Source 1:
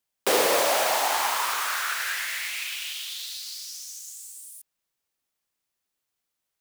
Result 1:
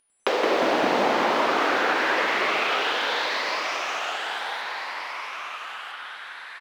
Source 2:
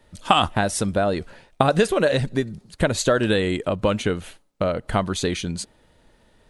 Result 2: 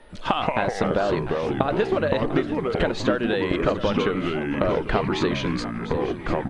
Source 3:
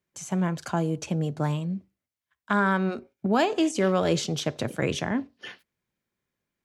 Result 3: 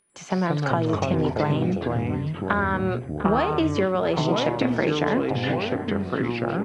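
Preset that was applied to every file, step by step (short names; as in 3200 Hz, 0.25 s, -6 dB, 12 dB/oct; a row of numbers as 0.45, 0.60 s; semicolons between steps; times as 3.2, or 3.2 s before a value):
bell 110 Hz -13.5 dB 1.6 oct; compressor 6:1, threshold -30 dBFS; whine 9700 Hz -50 dBFS; air absorption 220 m; echo 0.698 s -13.5 dB; echoes that change speed 99 ms, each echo -4 st, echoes 3; match loudness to -24 LUFS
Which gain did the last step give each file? +11.0, +10.0, +11.0 dB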